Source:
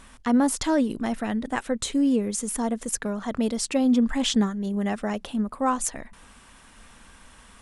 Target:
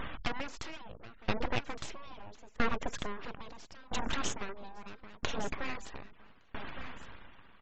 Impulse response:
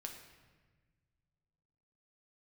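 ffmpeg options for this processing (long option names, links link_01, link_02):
-filter_complex "[0:a]lowpass=2500,afftfilt=real='re*lt(hypot(re,im),0.355)':imag='im*lt(hypot(re,im),0.355)':win_size=1024:overlap=0.75,crystalizer=i=2:c=0,acompressor=threshold=-43dB:ratio=2,aresample=16000,aeval=exprs='abs(val(0))':channel_layout=same,aresample=44100,afftfilt=real='re*gte(hypot(re,im),0.00158)':imag='im*gte(hypot(re,im),0.00158)':win_size=1024:overlap=0.75,asplit=2[link_01][link_02];[link_02]aecho=0:1:1163:0.2[link_03];[link_01][link_03]amix=inputs=2:normalize=0,aeval=exprs='val(0)*pow(10,-26*if(lt(mod(0.76*n/s,1),2*abs(0.76)/1000),1-mod(0.76*n/s,1)/(2*abs(0.76)/1000),(mod(0.76*n/s,1)-2*abs(0.76)/1000)/(1-2*abs(0.76)/1000))/20)':channel_layout=same,volume=13.5dB"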